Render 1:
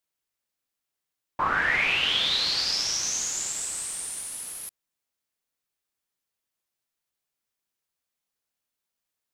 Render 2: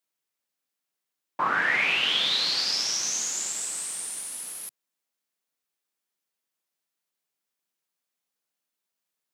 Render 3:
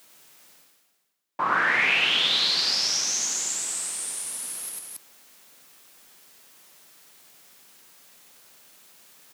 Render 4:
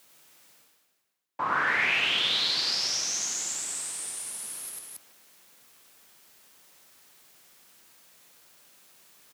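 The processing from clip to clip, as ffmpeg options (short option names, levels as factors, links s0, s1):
-af "highpass=f=150:w=0.5412,highpass=f=150:w=1.3066"
-af "aecho=1:1:96.21|274.1:0.794|0.282,areverse,acompressor=mode=upward:threshold=0.0316:ratio=2.5,areverse"
-filter_complex "[0:a]asplit=2[s0][s1];[s1]adelay=150,highpass=300,lowpass=3400,asoftclip=type=hard:threshold=0.112,volume=0.398[s2];[s0][s2]amix=inputs=2:normalize=0,afreqshift=-24,volume=0.631"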